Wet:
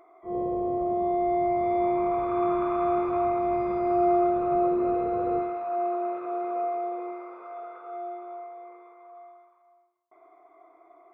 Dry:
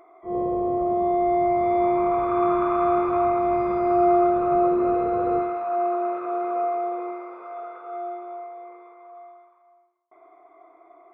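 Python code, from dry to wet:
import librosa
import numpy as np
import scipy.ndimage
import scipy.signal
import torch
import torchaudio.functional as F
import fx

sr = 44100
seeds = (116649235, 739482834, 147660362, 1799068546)

y = fx.dynamic_eq(x, sr, hz=1300.0, q=1.9, threshold_db=-40.0, ratio=4.0, max_db=-4)
y = F.gain(torch.from_numpy(y), -3.5).numpy()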